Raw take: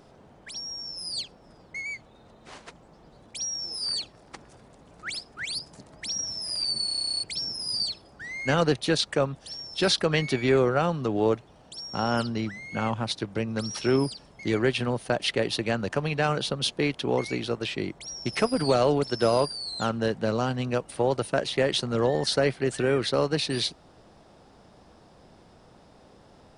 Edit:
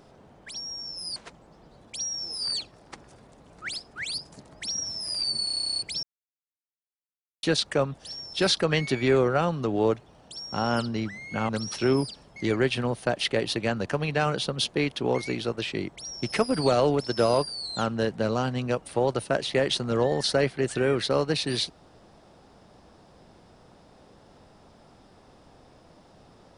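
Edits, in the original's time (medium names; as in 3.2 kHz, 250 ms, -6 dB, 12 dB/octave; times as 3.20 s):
1.16–2.57 s: delete
7.44–8.84 s: mute
12.90–13.52 s: delete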